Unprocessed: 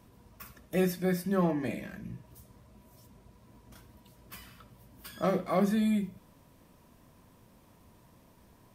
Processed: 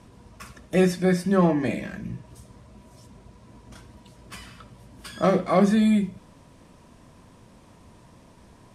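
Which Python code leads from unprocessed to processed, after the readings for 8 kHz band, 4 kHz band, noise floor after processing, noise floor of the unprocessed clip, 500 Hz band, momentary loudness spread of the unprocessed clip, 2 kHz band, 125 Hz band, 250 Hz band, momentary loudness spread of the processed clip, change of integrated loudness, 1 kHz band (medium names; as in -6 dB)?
+6.5 dB, +8.0 dB, -53 dBFS, -61 dBFS, +8.0 dB, 21 LU, +8.0 dB, +8.0 dB, +8.0 dB, 18 LU, +8.0 dB, +8.0 dB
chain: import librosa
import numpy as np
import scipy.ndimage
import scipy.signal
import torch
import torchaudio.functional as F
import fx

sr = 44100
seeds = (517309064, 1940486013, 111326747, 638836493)

y = scipy.signal.sosfilt(scipy.signal.butter(4, 9700.0, 'lowpass', fs=sr, output='sos'), x)
y = y * librosa.db_to_amplitude(8.0)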